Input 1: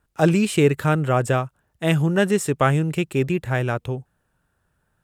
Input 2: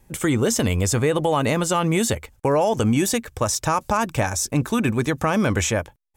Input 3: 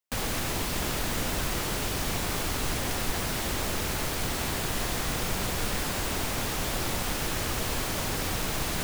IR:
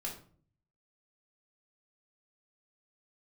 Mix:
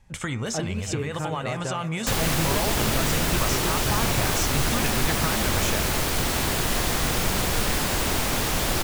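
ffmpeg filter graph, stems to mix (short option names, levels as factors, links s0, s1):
-filter_complex "[0:a]adelay=350,volume=0.473,asplit=2[s0][s1];[s1]volume=0.112[s2];[1:a]equalizer=f=350:t=o:w=1.2:g=-12,volume=1,asplit=2[s3][s4];[s4]volume=0.1[s5];[2:a]acontrast=63,adelay=1950,volume=0.944[s6];[s0][s3]amix=inputs=2:normalize=0,lowpass=5900,acompressor=threshold=0.0562:ratio=6,volume=1[s7];[s2][s5]amix=inputs=2:normalize=0,aecho=0:1:321|642|963|1284:1|0.29|0.0841|0.0244[s8];[s6][s7][s8]amix=inputs=3:normalize=0,bandreject=f=99.53:t=h:w=4,bandreject=f=199.06:t=h:w=4,bandreject=f=298.59:t=h:w=4,bandreject=f=398.12:t=h:w=4,bandreject=f=497.65:t=h:w=4,bandreject=f=597.18:t=h:w=4,bandreject=f=696.71:t=h:w=4,bandreject=f=796.24:t=h:w=4,bandreject=f=895.77:t=h:w=4,bandreject=f=995.3:t=h:w=4,bandreject=f=1094.83:t=h:w=4,bandreject=f=1194.36:t=h:w=4,bandreject=f=1293.89:t=h:w=4,bandreject=f=1393.42:t=h:w=4,bandreject=f=1492.95:t=h:w=4,bandreject=f=1592.48:t=h:w=4,bandreject=f=1692.01:t=h:w=4,bandreject=f=1791.54:t=h:w=4,bandreject=f=1891.07:t=h:w=4,bandreject=f=1990.6:t=h:w=4,bandreject=f=2090.13:t=h:w=4,bandreject=f=2189.66:t=h:w=4,bandreject=f=2289.19:t=h:w=4,bandreject=f=2388.72:t=h:w=4,bandreject=f=2488.25:t=h:w=4,bandreject=f=2587.78:t=h:w=4,bandreject=f=2687.31:t=h:w=4"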